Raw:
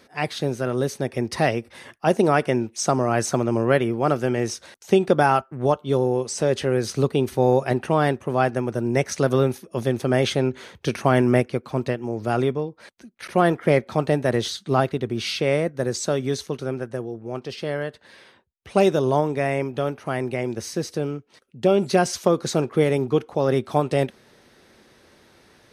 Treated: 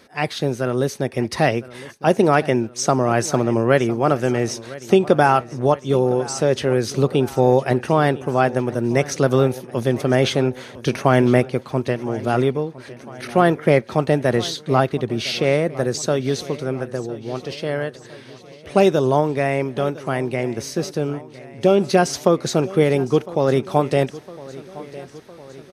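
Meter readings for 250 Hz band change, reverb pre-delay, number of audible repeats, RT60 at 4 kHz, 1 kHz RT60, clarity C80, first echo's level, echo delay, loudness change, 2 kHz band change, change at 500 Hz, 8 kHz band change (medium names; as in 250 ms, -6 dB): +3.0 dB, no reverb, 4, no reverb, no reverb, no reverb, -18.5 dB, 1008 ms, +3.0 dB, +3.0 dB, +3.0 dB, +2.0 dB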